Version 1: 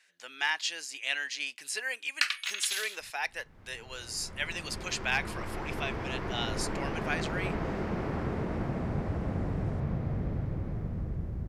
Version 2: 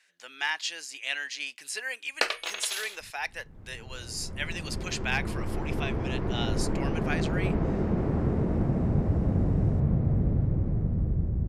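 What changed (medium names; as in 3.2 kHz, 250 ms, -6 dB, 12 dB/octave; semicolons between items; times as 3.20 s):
first sound: remove high-pass 1.4 kHz 24 dB/octave; second sound: add tilt shelf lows +8 dB, about 810 Hz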